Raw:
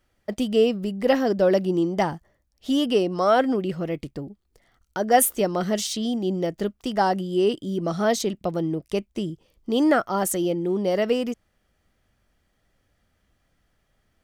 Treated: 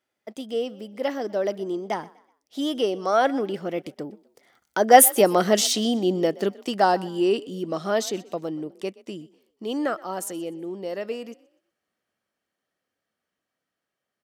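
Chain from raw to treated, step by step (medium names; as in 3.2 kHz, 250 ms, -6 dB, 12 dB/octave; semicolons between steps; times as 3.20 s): Doppler pass-by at 5.44 s, 15 m/s, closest 16 m; high-pass 260 Hz 12 dB/octave; on a send: frequency-shifting echo 124 ms, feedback 36%, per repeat +36 Hz, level -21.5 dB; on the sum: trim +6.5 dB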